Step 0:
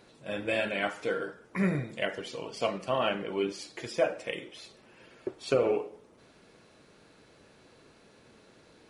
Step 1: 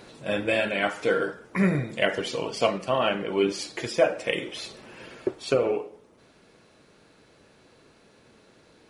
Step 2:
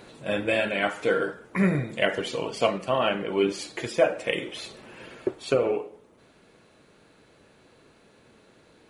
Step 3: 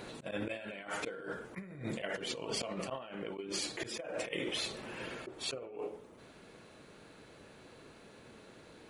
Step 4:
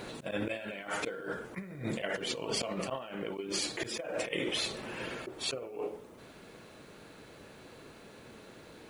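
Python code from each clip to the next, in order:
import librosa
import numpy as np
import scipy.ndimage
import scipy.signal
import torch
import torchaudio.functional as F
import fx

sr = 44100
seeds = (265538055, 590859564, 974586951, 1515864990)

y1 = fx.rider(x, sr, range_db=5, speed_s=0.5)
y1 = F.gain(torch.from_numpy(y1), 6.0).numpy()
y2 = fx.peak_eq(y1, sr, hz=5300.0, db=-5.5, octaves=0.43)
y3 = fx.auto_swell(y2, sr, attack_ms=163.0)
y3 = fx.over_compress(y3, sr, threshold_db=-37.0, ratio=-1.0)
y3 = F.gain(torch.from_numpy(y3), -4.0).numpy()
y4 = fx.quant_dither(y3, sr, seeds[0], bits=12, dither='none')
y4 = F.gain(torch.from_numpy(y4), 3.5).numpy()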